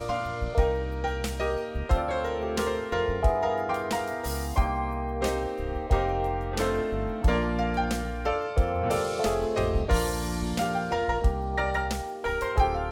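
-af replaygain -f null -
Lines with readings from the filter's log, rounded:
track_gain = +10.4 dB
track_peak = 0.219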